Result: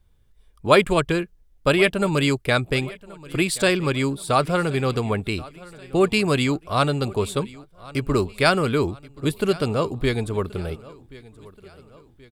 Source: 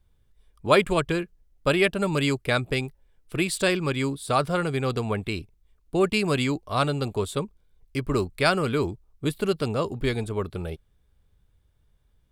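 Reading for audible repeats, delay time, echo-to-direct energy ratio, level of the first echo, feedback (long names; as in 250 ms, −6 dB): 3, 1,078 ms, −20.0 dB, −21.0 dB, 47%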